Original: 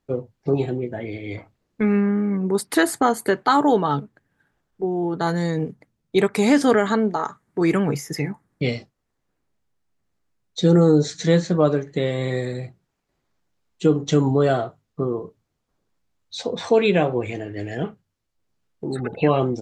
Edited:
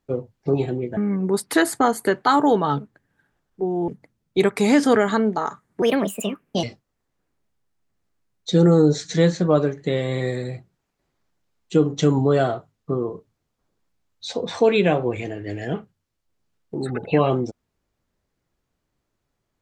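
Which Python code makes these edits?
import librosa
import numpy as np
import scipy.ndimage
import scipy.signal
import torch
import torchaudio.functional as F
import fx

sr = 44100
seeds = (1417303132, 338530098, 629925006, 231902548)

y = fx.edit(x, sr, fx.cut(start_s=0.97, length_s=1.21),
    fx.cut(start_s=5.09, length_s=0.57),
    fx.speed_span(start_s=7.6, length_s=1.13, speed=1.39), tone=tone)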